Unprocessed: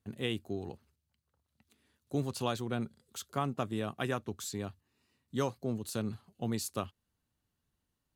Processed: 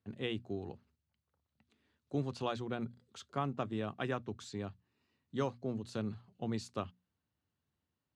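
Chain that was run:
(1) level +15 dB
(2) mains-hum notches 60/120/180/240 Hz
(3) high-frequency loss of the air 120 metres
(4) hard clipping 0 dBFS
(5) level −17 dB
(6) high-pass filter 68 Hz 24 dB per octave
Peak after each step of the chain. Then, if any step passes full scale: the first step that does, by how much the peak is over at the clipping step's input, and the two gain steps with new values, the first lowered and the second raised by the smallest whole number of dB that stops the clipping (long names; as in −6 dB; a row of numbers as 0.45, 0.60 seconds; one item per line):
−2.0, −2.5, −3.0, −3.0, −20.0, −21.5 dBFS
no step passes full scale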